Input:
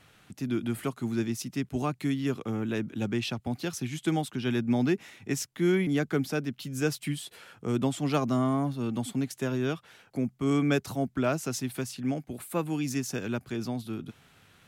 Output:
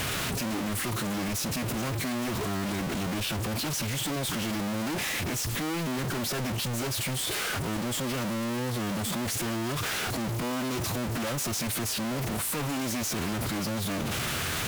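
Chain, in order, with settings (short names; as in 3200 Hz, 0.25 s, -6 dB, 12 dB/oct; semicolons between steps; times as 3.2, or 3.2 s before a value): infinite clipping; formant-preserving pitch shift -2 st; sample gate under -43 dBFS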